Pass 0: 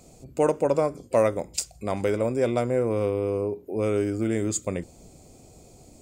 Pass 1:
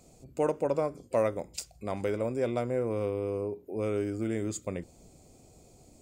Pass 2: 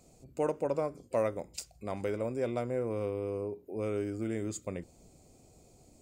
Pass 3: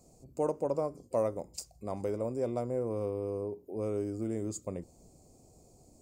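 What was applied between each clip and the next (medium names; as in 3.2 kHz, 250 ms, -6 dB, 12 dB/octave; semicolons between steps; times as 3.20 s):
dynamic bell 7.8 kHz, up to -5 dB, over -48 dBFS, Q 1.1; trim -6 dB
band-stop 3.4 kHz, Q 30; trim -3 dB
high-order bell 2.3 kHz -10.5 dB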